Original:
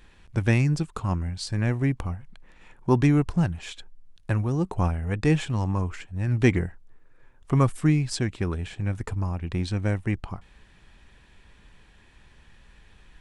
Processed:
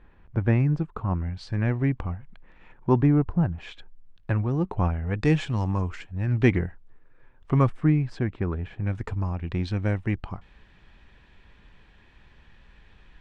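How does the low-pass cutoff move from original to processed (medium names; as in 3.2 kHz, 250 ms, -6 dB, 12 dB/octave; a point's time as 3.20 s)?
1.5 kHz
from 1.15 s 2.7 kHz
from 3.02 s 1.3 kHz
from 3.58 s 2.8 kHz
from 5.19 s 5.5 kHz
from 6.07 s 3.4 kHz
from 7.70 s 1.8 kHz
from 8.87 s 4 kHz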